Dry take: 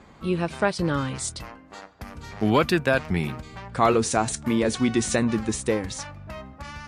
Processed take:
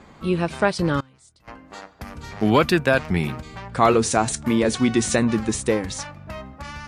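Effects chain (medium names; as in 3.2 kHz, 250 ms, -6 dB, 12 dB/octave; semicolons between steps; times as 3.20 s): hum notches 50/100 Hz; 1.00–1.48 s: inverted gate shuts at -26 dBFS, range -26 dB; trim +3 dB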